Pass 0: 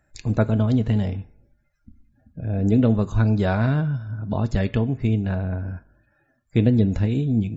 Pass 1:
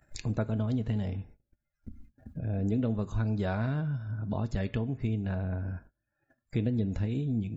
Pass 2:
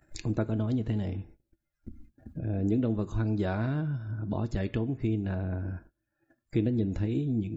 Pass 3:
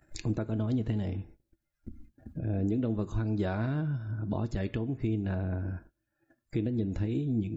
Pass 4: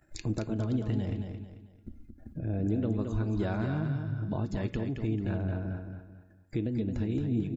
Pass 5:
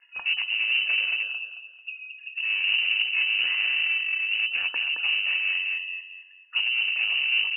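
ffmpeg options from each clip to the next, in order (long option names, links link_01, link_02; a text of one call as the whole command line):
ffmpeg -i in.wav -af "acompressor=mode=upward:threshold=-29dB:ratio=2.5,agate=range=-28dB:threshold=-43dB:ratio=16:detection=peak,acompressor=threshold=-27dB:ratio=2,volume=-4dB" out.wav
ffmpeg -i in.wav -af "equalizer=frequency=330:width=5:gain=11.5" out.wav
ffmpeg -i in.wav -af "alimiter=limit=-21dB:level=0:latency=1:release=237" out.wav
ffmpeg -i in.wav -af "aecho=1:1:221|442|663|884:0.501|0.175|0.0614|0.0215,volume=-1dB" out.wav
ffmpeg -i in.wav -af "afreqshift=-480,aeval=exprs='clip(val(0),-1,0.0211)':channel_layout=same,lowpass=frequency=2600:width_type=q:width=0.5098,lowpass=frequency=2600:width_type=q:width=0.6013,lowpass=frequency=2600:width_type=q:width=0.9,lowpass=frequency=2600:width_type=q:width=2.563,afreqshift=-3000,volume=7dB" out.wav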